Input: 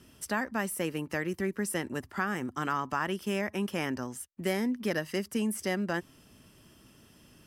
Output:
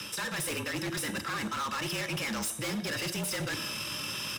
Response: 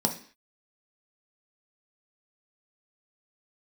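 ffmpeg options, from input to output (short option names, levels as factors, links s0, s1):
-filter_complex "[0:a]equalizer=f=480:t=o:w=1.8:g=-9.5,atempo=1.7,asplit=2[s0][s1];[s1]highpass=f=720:p=1,volume=25.1,asoftclip=type=tanh:threshold=0.1[s2];[s0][s2]amix=inputs=2:normalize=0,lowpass=f=2800:p=1,volume=0.501,areverse,acompressor=threshold=0.0126:ratio=8,areverse,highshelf=f=7000:g=3,asplit=2[s3][s4];[1:a]atrim=start_sample=2205,asetrate=29547,aresample=44100,highshelf=f=2300:g=6.5[s5];[s4][s5]afir=irnorm=-1:irlink=0,volume=0.299[s6];[s3][s6]amix=inputs=2:normalize=0,afreqshift=-42,highpass=f=330:p=1,aeval=exprs='0.0266*(abs(mod(val(0)/0.0266+3,4)-2)-1)':c=same,volume=1.5"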